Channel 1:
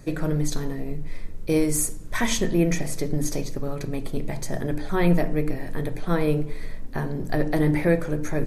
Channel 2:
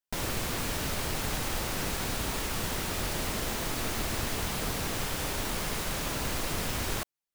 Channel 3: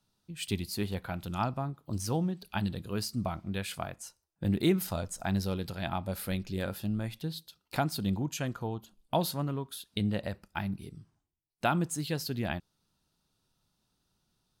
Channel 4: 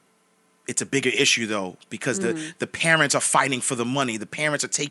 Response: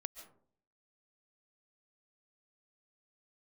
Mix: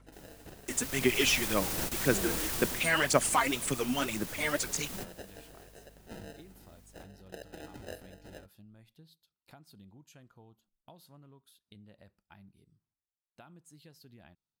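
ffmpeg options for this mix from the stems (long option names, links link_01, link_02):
-filter_complex "[0:a]highpass=890,acrusher=samples=39:mix=1:aa=0.000001,aeval=exprs='val(0)+0.00562*(sin(2*PI*50*n/s)+sin(2*PI*2*50*n/s)/2+sin(2*PI*3*50*n/s)/3+sin(2*PI*4*50*n/s)/4+sin(2*PI*5*50*n/s)/5)':channel_layout=same,volume=-13.5dB[link_01];[1:a]highshelf=frequency=5900:gain=10.5,alimiter=limit=-23.5dB:level=0:latency=1,volume=-1.5dB,afade=type=in:start_time=0.67:duration=0.69:silence=0.316228,afade=type=out:start_time=2.64:duration=0.28:silence=0.398107,afade=type=out:start_time=5.29:duration=0.66:silence=0.334965[link_02];[2:a]acompressor=threshold=-31dB:ratio=6,adelay=1750,volume=-20dB[link_03];[3:a]aphaser=in_gain=1:out_gain=1:delay=4.3:decay=0.67:speed=1.9:type=sinusoidal,volume=-10.5dB,asplit=2[link_04][link_05];[link_05]apad=whole_len=323735[link_06];[link_02][link_06]sidechaingate=range=-14dB:threshold=-58dB:ratio=16:detection=peak[link_07];[link_01][link_07][link_03][link_04]amix=inputs=4:normalize=0"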